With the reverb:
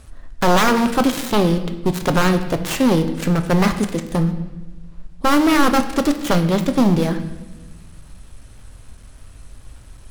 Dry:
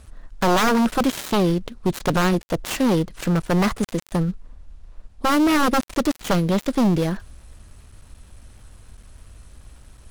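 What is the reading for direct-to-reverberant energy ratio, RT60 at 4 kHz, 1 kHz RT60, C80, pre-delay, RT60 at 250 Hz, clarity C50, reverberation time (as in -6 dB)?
7.0 dB, 0.95 s, 0.95 s, 12.5 dB, 7 ms, 1.7 s, 11.0 dB, 1.1 s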